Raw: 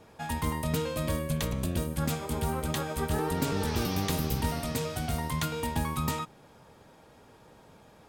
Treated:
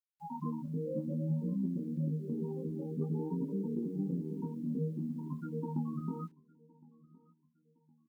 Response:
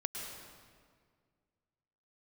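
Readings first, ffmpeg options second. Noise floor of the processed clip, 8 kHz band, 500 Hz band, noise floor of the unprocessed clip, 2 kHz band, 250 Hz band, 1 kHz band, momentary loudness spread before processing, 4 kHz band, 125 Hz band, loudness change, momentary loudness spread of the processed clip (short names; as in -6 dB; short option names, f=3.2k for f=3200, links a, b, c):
-74 dBFS, under -35 dB, -7.5 dB, -56 dBFS, under -30 dB, -1.5 dB, -15.5 dB, 3 LU, under -35 dB, -5.5 dB, -6.0 dB, 5 LU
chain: -filter_complex "[0:a]acrossover=split=360|1900[a][b][c];[a]dynaudnorm=f=170:g=9:m=12.5dB[d];[d][b][c]amix=inputs=3:normalize=0,aemphasis=mode=reproduction:type=75fm,bandreject=f=226:t=h:w=4,bandreject=f=452:t=h:w=4,bandreject=f=678:t=h:w=4,bandreject=f=904:t=h:w=4,bandreject=f=1.13k:t=h:w=4,bandreject=f=1.356k:t=h:w=4,afftfilt=real='re*gte(hypot(re,im),0.126)':imag='im*gte(hypot(re,im),0.126)':win_size=1024:overlap=0.75,highshelf=f=4.2k:g=4.5,afftfilt=real='re*between(b*sr/4096,140,5900)':imag='im*between(b*sr/4096,140,5900)':win_size=4096:overlap=0.75,acompressor=threshold=-29dB:ratio=10,flanger=delay=15.5:depth=7.9:speed=0.56,acrusher=bits=11:mix=0:aa=0.000001,asuperstop=centerf=680:order=20:qfactor=3.2,asplit=2[e][f];[f]adelay=1063,lowpass=f=2k:p=1,volume=-24dB,asplit=2[g][h];[h]adelay=1063,lowpass=f=2k:p=1,volume=0.37[i];[e][g][i]amix=inputs=3:normalize=0"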